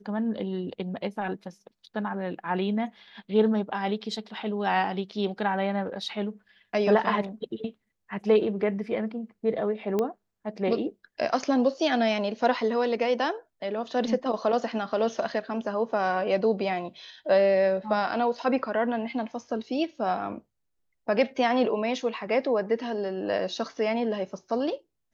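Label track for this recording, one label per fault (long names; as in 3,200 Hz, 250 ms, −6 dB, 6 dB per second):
9.990000	9.990000	click −15 dBFS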